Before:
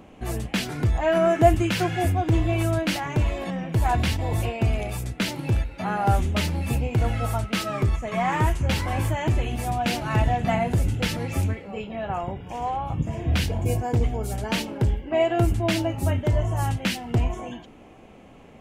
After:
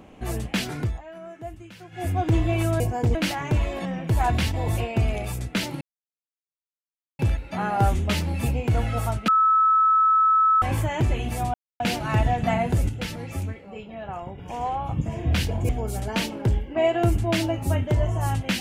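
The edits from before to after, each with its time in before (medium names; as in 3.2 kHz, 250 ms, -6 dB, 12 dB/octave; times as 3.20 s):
0.74–2.20 s: dip -20.5 dB, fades 0.29 s
5.46 s: insert silence 1.38 s
7.55–8.89 s: bleep 1.3 kHz -15 dBFS
9.81 s: insert silence 0.26 s
10.90–12.39 s: gain -5.5 dB
13.70–14.05 s: move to 2.80 s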